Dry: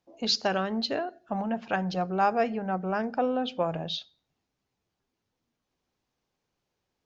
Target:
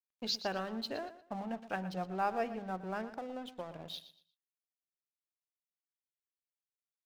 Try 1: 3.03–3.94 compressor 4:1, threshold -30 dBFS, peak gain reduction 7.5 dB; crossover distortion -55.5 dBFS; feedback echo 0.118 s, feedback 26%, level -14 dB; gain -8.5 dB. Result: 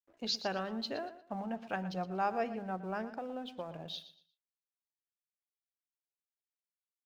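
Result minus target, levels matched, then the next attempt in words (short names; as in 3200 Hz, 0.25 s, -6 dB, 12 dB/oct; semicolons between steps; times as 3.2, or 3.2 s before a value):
crossover distortion: distortion -11 dB
3.03–3.94 compressor 4:1, threshold -30 dBFS, peak gain reduction 7.5 dB; crossover distortion -44 dBFS; feedback echo 0.118 s, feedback 26%, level -14 dB; gain -8.5 dB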